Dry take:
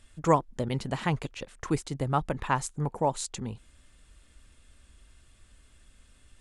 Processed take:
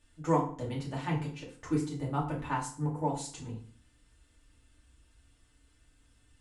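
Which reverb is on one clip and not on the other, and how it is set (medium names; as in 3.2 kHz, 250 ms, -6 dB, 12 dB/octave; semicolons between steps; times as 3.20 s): FDN reverb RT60 0.46 s, low-frequency decay 1.3×, high-frequency decay 0.8×, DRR -6.5 dB; trim -13.5 dB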